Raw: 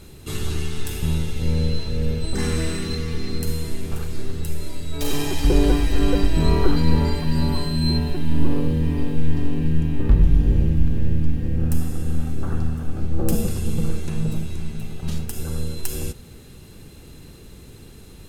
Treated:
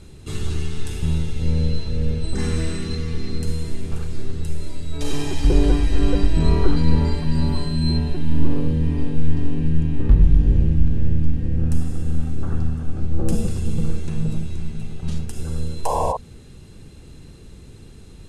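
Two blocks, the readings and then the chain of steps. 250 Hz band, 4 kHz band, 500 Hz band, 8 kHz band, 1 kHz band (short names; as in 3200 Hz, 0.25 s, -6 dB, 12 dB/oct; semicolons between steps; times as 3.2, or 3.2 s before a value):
-0.5 dB, -3.0 dB, -1.0 dB, -4.0 dB, +3.5 dB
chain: LPF 10000 Hz 24 dB/oct; low shelf 240 Hz +5 dB; painted sound noise, 15.85–16.17, 440–1100 Hz -19 dBFS; gain -3 dB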